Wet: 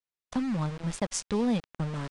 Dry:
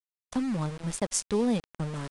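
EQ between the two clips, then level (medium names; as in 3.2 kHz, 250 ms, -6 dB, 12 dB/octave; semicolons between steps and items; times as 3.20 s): dynamic bell 400 Hz, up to -5 dB, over -40 dBFS, Q 1.4; distance through air 63 m; +1.5 dB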